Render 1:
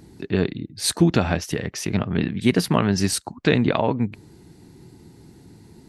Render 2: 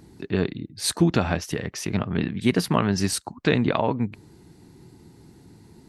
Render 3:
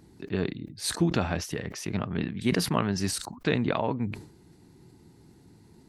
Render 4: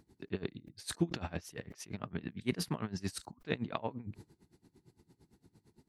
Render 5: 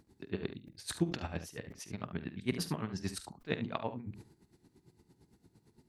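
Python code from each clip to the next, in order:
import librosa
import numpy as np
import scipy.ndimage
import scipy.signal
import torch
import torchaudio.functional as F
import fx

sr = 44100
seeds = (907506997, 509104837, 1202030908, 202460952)

y1 = fx.peak_eq(x, sr, hz=1100.0, db=2.5, octaves=0.77)
y1 = y1 * 10.0 ** (-2.5 / 20.0)
y2 = fx.sustainer(y1, sr, db_per_s=100.0)
y2 = y2 * 10.0 ** (-5.5 / 20.0)
y3 = y2 * 10.0 ** (-21 * (0.5 - 0.5 * np.cos(2.0 * np.pi * 8.8 * np.arange(len(y2)) / sr)) / 20.0)
y3 = y3 * 10.0 ** (-5.0 / 20.0)
y4 = fx.room_early_taps(y3, sr, ms=(47, 72), db=(-14.5, -12.0))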